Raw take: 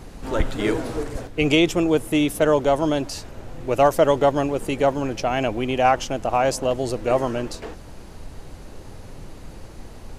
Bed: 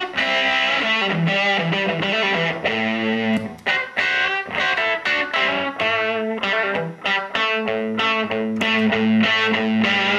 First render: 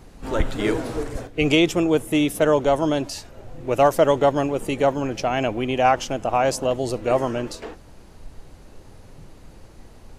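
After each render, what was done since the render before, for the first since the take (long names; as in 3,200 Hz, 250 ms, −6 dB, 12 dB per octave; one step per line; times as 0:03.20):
noise reduction from a noise print 6 dB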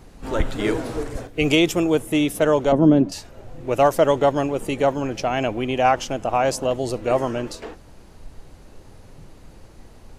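0:01.28–0:01.96: high-shelf EQ 11,000 Hz +11 dB
0:02.72–0:03.12: drawn EQ curve 100 Hz 0 dB, 190 Hz +15 dB, 890 Hz −4 dB, 1,500 Hz −5 dB, 9,900 Hz −19 dB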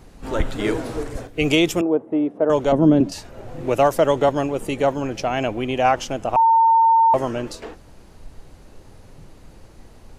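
0:01.81–0:02.50: flat-topped band-pass 460 Hz, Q 0.62
0:03.00–0:04.29: multiband upward and downward compressor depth 40%
0:06.36–0:07.14: beep over 907 Hz −11 dBFS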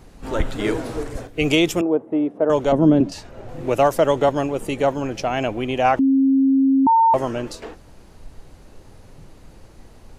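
0:02.91–0:03.49: high-shelf EQ 9,800 Hz −11 dB
0:05.99–0:06.87: beep over 269 Hz −12.5 dBFS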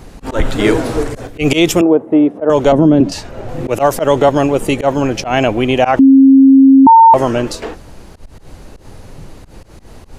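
volume swells 103 ms
boost into a limiter +10.5 dB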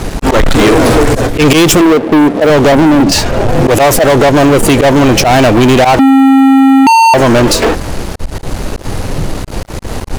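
downward compressor 6 to 1, threshold −11 dBFS, peak gain reduction 7.5 dB
leveller curve on the samples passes 5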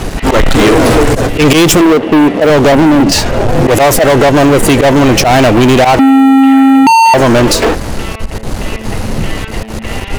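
mix in bed −8 dB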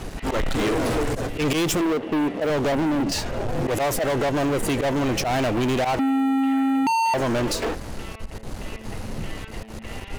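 level −16 dB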